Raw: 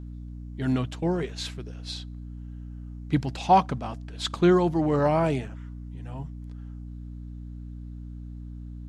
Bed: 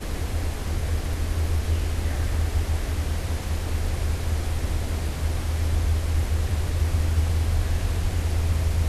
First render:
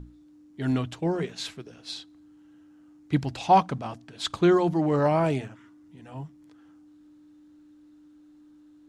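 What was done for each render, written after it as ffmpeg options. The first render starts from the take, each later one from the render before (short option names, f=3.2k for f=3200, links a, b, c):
-af "bandreject=f=60:t=h:w=6,bandreject=f=120:t=h:w=6,bandreject=f=180:t=h:w=6,bandreject=f=240:t=h:w=6"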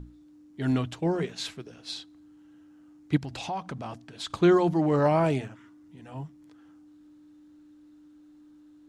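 -filter_complex "[0:a]asplit=3[a][b][c];[a]afade=t=out:st=3.16:d=0.02[d];[b]acompressor=threshold=-32dB:ratio=4:attack=3.2:release=140:knee=1:detection=peak,afade=t=in:st=3.16:d=0.02,afade=t=out:st=4.31:d=0.02[e];[c]afade=t=in:st=4.31:d=0.02[f];[d][e][f]amix=inputs=3:normalize=0"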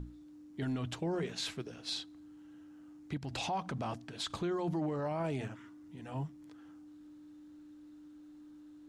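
-af "acompressor=threshold=-27dB:ratio=6,alimiter=level_in=4dB:limit=-24dB:level=0:latency=1:release=12,volume=-4dB"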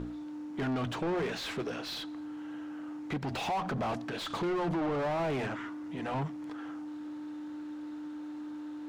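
-filter_complex "[0:a]asplit=2[a][b];[b]aeval=exprs='sgn(val(0))*max(abs(val(0))-0.00126,0)':c=same,volume=-9.5dB[c];[a][c]amix=inputs=2:normalize=0,asplit=2[d][e];[e]highpass=f=720:p=1,volume=26dB,asoftclip=type=tanh:threshold=-25.5dB[f];[d][f]amix=inputs=2:normalize=0,lowpass=f=1.5k:p=1,volume=-6dB"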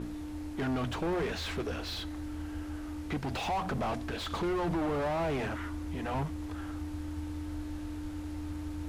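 -filter_complex "[1:a]volume=-18.5dB[a];[0:a][a]amix=inputs=2:normalize=0"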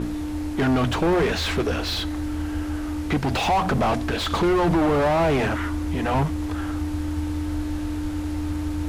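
-af "volume=11.5dB"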